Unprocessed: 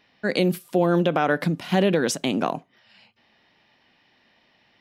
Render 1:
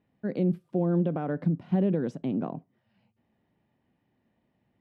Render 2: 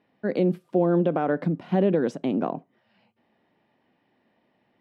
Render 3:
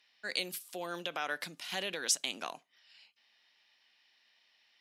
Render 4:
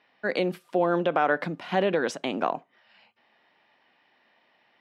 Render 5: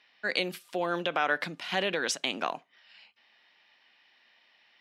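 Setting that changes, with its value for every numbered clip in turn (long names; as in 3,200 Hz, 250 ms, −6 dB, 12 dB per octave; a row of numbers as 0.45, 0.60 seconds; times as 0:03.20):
resonant band-pass, frequency: 100, 300, 7,900, 1,000, 2,700 Hertz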